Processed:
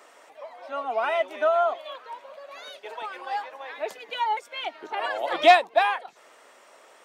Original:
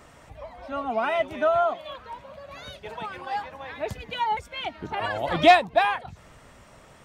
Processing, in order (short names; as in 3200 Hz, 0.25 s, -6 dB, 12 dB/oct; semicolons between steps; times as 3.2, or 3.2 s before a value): HPF 370 Hz 24 dB/oct